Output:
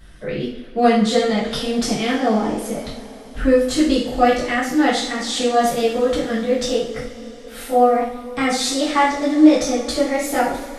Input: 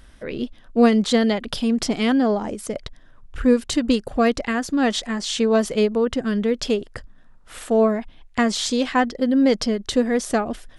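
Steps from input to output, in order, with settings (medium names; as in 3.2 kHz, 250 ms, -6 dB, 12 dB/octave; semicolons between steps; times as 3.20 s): pitch bend over the whole clip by +2.5 st starting unshifted; short-mantissa float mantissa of 8-bit; two-slope reverb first 0.54 s, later 5 s, from -21 dB, DRR -8 dB; trim -4 dB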